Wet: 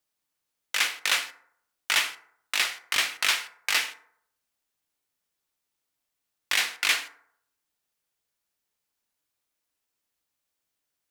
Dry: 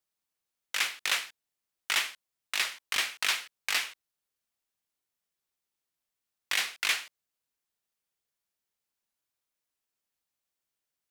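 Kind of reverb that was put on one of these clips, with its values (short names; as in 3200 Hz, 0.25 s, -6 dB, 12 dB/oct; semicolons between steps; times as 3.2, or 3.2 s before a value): FDN reverb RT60 0.67 s, low-frequency decay 0.8×, high-frequency decay 0.45×, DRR 9 dB; gain +4 dB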